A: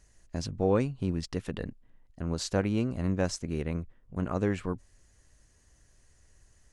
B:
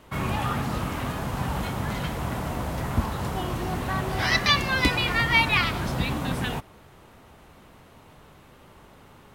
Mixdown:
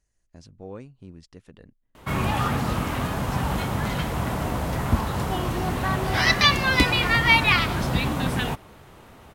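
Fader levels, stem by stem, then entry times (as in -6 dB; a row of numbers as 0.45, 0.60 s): -13.5, +3.0 dB; 0.00, 1.95 s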